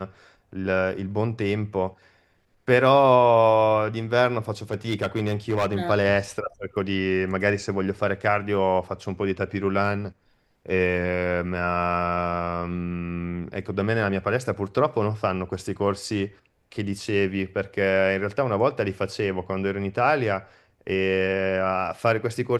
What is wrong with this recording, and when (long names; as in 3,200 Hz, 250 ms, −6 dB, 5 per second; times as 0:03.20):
0:04.71–0:05.81: clipping −18 dBFS